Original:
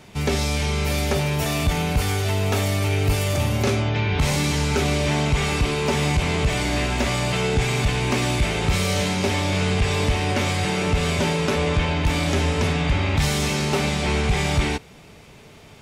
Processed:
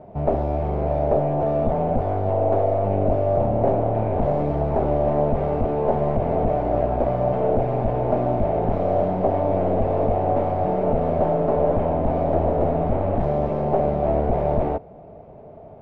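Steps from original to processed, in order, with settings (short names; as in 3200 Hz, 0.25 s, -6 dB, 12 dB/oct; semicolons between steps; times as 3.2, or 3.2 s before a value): one-sided fold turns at -23 dBFS; synth low-pass 660 Hz, resonance Q 4.9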